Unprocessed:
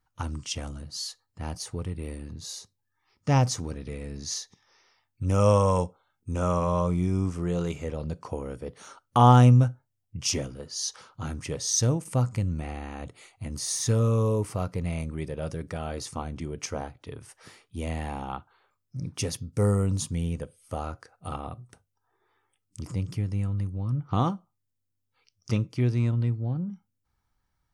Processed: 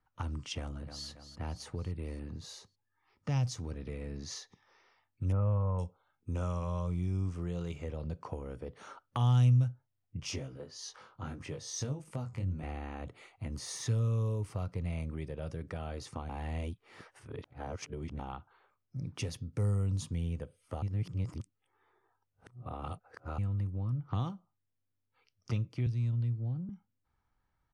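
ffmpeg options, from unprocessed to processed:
-filter_complex "[0:a]asplit=2[a][b];[b]afade=t=in:st=0.59:d=0.01,afade=t=out:st=1.07:d=0.01,aecho=0:1:280|560|840|1120|1400|1680:0.281838|0.155011|0.0852561|0.0468908|0.02579|0.0141845[c];[a][c]amix=inputs=2:normalize=0,asettb=1/sr,asplit=3[d][e][f];[d]atrim=end=5.324[g];[e]atrim=start=5.32:end=5.79,asetpts=PTS-STARTPTS,afade=t=in:d=0.004:c=qsin,afade=t=out:st=0.466:d=0.004:c=qsin,lowpass=f=1.7k:w=0.5412,lowpass=f=1.7k:w=1.3066[h];[f]atrim=start=5.786[i];[g][h]acrossfade=d=0.004:c1=hsin:c2=qsin[j];[j][i]acrossfade=d=0.004:c1=qsin:c2=hsin,asettb=1/sr,asplit=3[k][l][m];[k]atrim=end=10.204[n];[l]atrim=start=10.2:end=12.63,asetpts=PTS-STARTPTS,afade=t=in:d=0.004:c=qsin,afade=t=out:st=2.426:d=0.004:c=qsin,flanger=delay=19.5:depth=3:speed=1.6[o];[m]atrim=start=12.626[p];[n][o]acrossfade=d=0.004:c1=hsin:c2=qsin[q];[q][p]acrossfade=d=0.004:c1=qsin:c2=hsin,asettb=1/sr,asplit=3[r][s][t];[r]atrim=end=25.864[u];[s]atrim=start=25.86:end=26.69,asetpts=PTS-STARTPTS,afade=t=in:d=0.004:c=qsin,afade=t=out:st=0.826:d=0.004:c=qsin,acrossover=split=210|3000[v][w][x];[w]acompressor=threshold=-45dB:ratio=2.5:attack=3.2:release=140:knee=2.83:detection=peak[y];[v][y][x]amix=inputs=3:normalize=0[z];[t]atrim=start=26.686[aa];[u][z]acrossfade=d=0.004:c1=hsin:c2=qsin[ab];[ab][aa]acrossfade=d=0.004:c1=qsin:c2=hsin,asplit=5[ac][ad][ae][af][ag];[ac]atrim=end=16.292[ah];[ad]atrim=start=16.288:end=18.192,asetpts=PTS-STARTPTS,areverse[ai];[ae]atrim=start=18.188:end=20.822[aj];[af]atrim=start=20.818:end=23.382,asetpts=PTS-STARTPTS,areverse[ak];[ag]atrim=start=23.378[al];[ah][ai]acrossfade=d=0.004:c1=hsin:c2=hsin[am];[am][aj]acrossfade=d=0.004:c1=hsin:c2=hsin[an];[an][ak]acrossfade=d=0.004:c1=hsin:c2=hsin[ao];[ao][al]acrossfade=d=0.004:c1=hsin:c2=hsin,highshelf=f=4.4k:g=-10,acrossover=split=130|3000[ap][aq][ar];[aq]acompressor=threshold=-39dB:ratio=5[as];[ap][as][ar]amix=inputs=3:normalize=0,bass=f=250:g=-3,treble=f=4k:g=-6"

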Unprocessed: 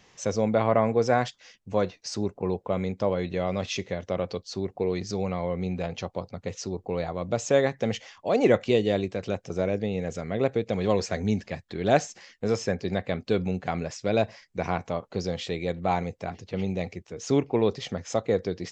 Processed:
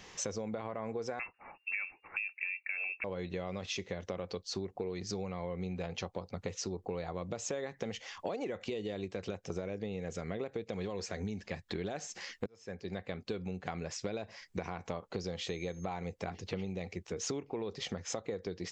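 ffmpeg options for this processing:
-filter_complex "[0:a]asettb=1/sr,asplit=3[a][b][c];[a]atrim=end=1.194[d];[b]atrim=start=1.19:end=3.04,asetpts=PTS-STARTPTS,afade=t=in:d=0.004:c=qsin,afade=t=out:st=1.846:d=0.004:c=qsin,lowpass=f=2.4k:t=q:w=0.5098,lowpass=f=2.4k:t=q:w=0.6013,lowpass=f=2.4k:t=q:w=0.9,lowpass=f=2.4k:t=q:w=2.563,afreqshift=-2800[e];[c]atrim=start=3.036[f];[d][e]acrossfade=d=0.004:c1=hsin:c2=qsin[g];[g][f]acrossfade=d=0.004:c1=qsin:c2=hsin,asettb=1/sr,asplit=3[h][i][j];[h]atrim=end=15.404[k];[i]atrim=start=15.4:end=15.85,asetpts=PTS-STARTPTS,afade=t=in:d=0.004:c=qsin,afade=t=out:st=0.446:d=0.004:c=qsin,aeval=exprs='val(0)+0.00224*sin(2*PI*6400*n/s)':c=same[l];[j]atrim=start=15.846[m];[k][l]acrossfade=d=0.004:c1=hsin:c2=qsin[n];[n][m]acrossfade=d=0.004:c1=qsin:c2=hsin,asplit=2[o][p];[o]atrim=end=12.46,asetpts=PTS-STARTPTS,afade=t=out:st=12.456:d=0.004:c=hsin[q];[p]atrim=start=12.46,asetpts=PTS-STARTPTS,afade=t=in:d=2.25[r];[q][r]concat=n=2:v=0:a=1,equalizer=f=125:t=o:w=0.33:g=-9,equalizer=f=250:t=o:w=0.33:g=-4,equalizer=f=630:t=o:w=0.33:g=-4,alimiter=limit=-18.5dB:level=0:latency=1:release=99,acompressor=threshold=-40dB:ratio=12,volume=5.5dB"

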